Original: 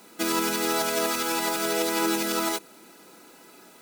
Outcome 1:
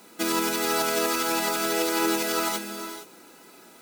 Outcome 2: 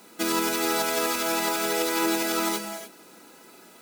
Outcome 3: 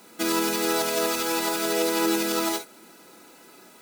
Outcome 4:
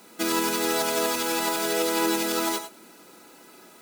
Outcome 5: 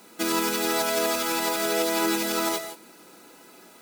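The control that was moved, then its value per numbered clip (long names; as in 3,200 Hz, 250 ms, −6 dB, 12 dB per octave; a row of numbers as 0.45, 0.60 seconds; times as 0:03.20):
reverb whose tail is shaped and stops, gate: 490, 320, 80, 120, 190 milliseconds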